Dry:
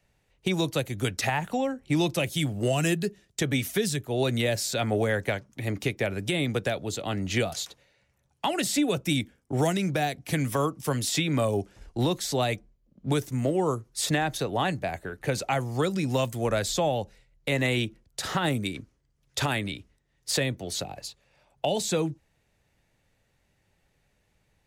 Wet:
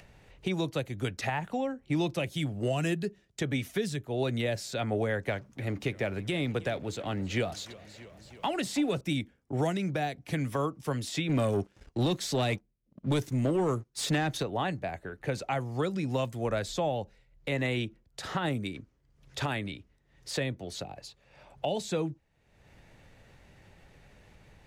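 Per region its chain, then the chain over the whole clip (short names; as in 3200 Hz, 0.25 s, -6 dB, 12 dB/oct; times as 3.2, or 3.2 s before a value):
5.26–9.01 G.711 law mismatch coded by mu + warbling echo 0.323 s, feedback 49%, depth 99 cents, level -20 dB
11.29–14.43 HPF 98 Hz 6 dB/oct + bell 850 Hz -6.5 dB 2 oct + sample leveller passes 2
whole clip: LPF 3300 Hz 6 dB/oct; upward compressor, threshold -36 dBFS; gain -4 dB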